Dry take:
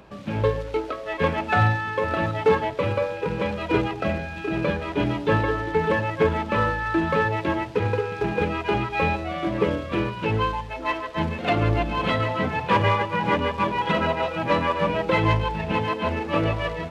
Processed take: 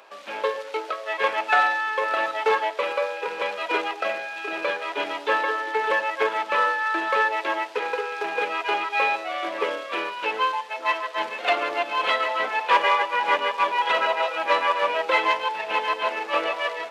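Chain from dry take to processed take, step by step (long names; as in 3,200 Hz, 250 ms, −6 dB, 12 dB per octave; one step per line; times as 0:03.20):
Bessel high-pass filter 710 Hz, order 4
level +4 dB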